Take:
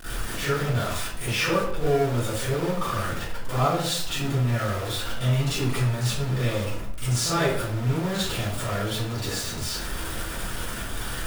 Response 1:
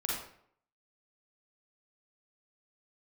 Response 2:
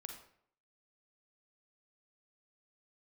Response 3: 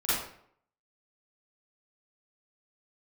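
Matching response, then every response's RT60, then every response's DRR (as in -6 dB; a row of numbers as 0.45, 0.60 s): 3; 0.65, 0.65, 0.65 s; -4.5, 3.0, -13.5 dB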